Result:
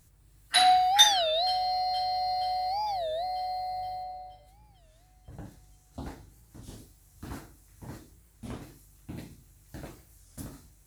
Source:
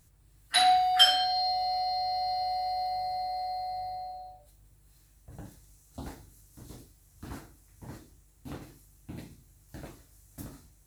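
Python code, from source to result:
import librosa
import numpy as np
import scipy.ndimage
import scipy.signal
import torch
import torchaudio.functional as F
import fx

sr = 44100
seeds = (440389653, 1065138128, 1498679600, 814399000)

y = fx.high_shelf(x, sr, hz=6300.0, db=-8.0, at=(4.03, 6.66))
y = fx.echo_wet_highpass(y, sr, ms=472, feedback_pct=59, hz=1700.0, wet_db=-22.0)
y = fx.record_warp(y, sr, rpm=33.33, depth_cents=250.0)
y = y * librosa.db_to_amplitude(1.5)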